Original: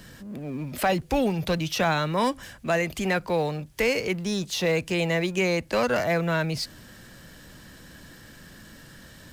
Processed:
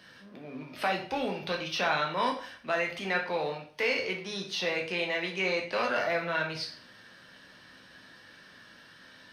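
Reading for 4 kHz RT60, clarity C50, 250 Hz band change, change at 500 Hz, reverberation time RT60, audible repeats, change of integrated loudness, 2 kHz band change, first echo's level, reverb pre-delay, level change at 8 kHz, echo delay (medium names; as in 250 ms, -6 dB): 0.40 s, 8.0 dB, -11.0 dB, -6.5 dB, 0.45 s, no echo, -4.5 dB, -1.5 dB, no echo, 9 ms, -11.0 dB, no echo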